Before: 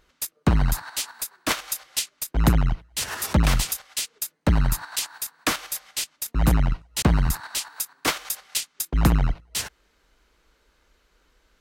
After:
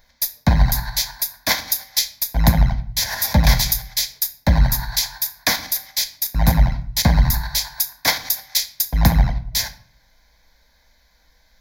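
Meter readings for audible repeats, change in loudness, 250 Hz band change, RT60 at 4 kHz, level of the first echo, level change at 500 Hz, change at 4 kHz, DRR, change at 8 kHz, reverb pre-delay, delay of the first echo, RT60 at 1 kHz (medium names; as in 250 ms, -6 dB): no echo, +5.5 dB, +2.5 dB, 0.40 s, no echo, +2.0 dB, +8.0 dB, 8.0 dB, +4.5 dB, 3 ms, no echo, 0.50 s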